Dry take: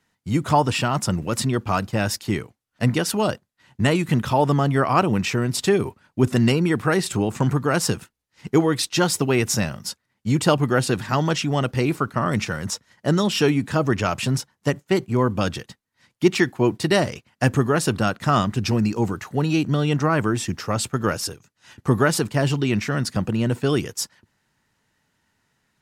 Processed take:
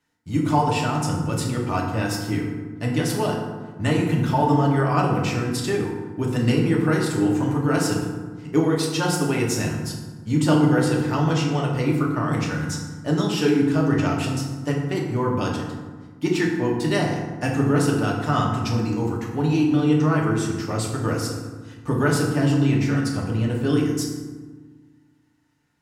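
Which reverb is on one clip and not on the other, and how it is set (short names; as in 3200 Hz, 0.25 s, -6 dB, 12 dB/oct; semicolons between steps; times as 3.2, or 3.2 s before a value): FDN reverb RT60 1.4 s, low-frequency decay 1.45×, high-frequency decay 0.5×, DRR -2.5 dB; gain -7 dB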